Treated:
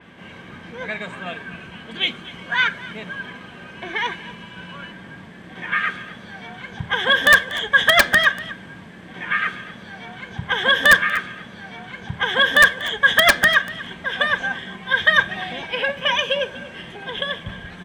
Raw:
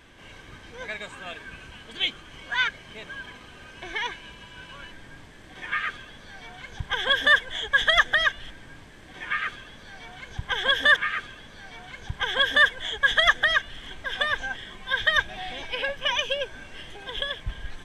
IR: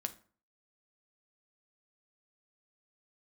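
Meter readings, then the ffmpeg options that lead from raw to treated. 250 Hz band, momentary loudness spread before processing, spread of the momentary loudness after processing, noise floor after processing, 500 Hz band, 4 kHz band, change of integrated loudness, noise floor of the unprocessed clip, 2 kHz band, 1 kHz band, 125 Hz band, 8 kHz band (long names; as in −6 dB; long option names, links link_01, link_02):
+11.5 dB, 24 LU, 23 LU, −41 dBFS, +7.0 dB, +4.0 dB, +6.0 dB, −47 dBFS, +6.5 dB, +6.0 dB, +6.5 dB, +10.0 dB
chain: -filter_complex "[0:a]highpass=110,aeval=exprs='(mod(2.82*val(0)+1,2)-1)/2.82':channel_layout=same,equalizer=frequency=180:width_type=o:width=0.32:gain=12.5,aecho=1:1:241:0.126,asplit=2[link_01][link_02];[1:a]atrim=start_sample=2205,asetrate=48510,aresample=44100,lowpass=3500[link_03];[link_02][link_03]afir=irnorm=-1:irlink=0,volume=6dB[link_04];[link_01][link_04]amix=inputs=2:normalize=0,adynamicequalizer=threshold=0.0398:dfrequency=4400:dqfactor=0.7:tfrequency=4400:tqfactor=0.7:attack=5:release=100:ratio=0.375:range=2.5:mode=boostabove:tftype=highshelf,volume=-1.5dB"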